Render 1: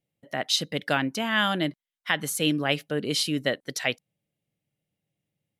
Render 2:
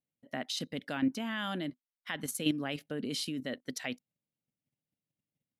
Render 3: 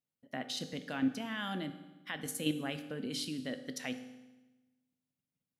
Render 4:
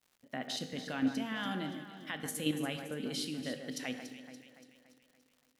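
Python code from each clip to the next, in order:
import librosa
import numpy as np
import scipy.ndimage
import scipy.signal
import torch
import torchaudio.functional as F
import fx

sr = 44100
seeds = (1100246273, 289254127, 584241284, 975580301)

y1 = fx.peak_eq(x, sr, hz=250.0, db=11.5, octaves=0.32)
y1 = fx.level_steps(y1, sr, step_db=10)
y1 = y1 * 10.0 ** (-5.5 / 20.0)
y2 = fx.rev_fdn(y1, sr, rt60_s=1.1, lf_ratio=1.25, hf_ratio=0.95, size_ms=12.0, drr_db=8.0)
y2 = y2 * 10.0 ** (-3.0 / 20.0)
y3 = fx.echo_alternate(y2, sr, ms=143, hz=2200.0, feedback_pct=71, wet_db=-8.0)
y3 = fx.dmg_crackle(y3, sr, seeds[0], per_s=160.0, level_db=-54.0)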